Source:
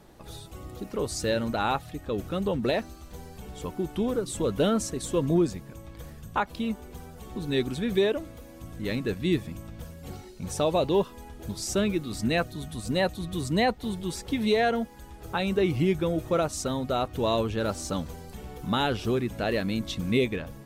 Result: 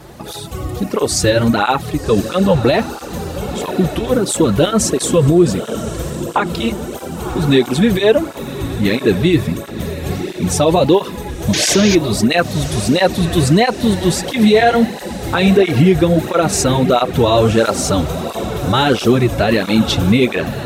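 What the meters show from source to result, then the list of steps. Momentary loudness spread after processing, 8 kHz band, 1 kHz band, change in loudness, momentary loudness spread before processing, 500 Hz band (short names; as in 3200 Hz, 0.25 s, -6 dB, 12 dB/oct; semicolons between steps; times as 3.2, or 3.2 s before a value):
12 LU, +17.0 dB, +13.0 dB, +13.5 dB, 18 LU, +13.0 dB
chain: painted sound noise, 11.53–11.95, 1500–6900 Hz -35 dBFS; diffused feedback echo 1.072 s, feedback 55%, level -15 dB; maximiser +19.5 dB; tape flanging out of phase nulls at 1.5 Hz, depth 5.2 ms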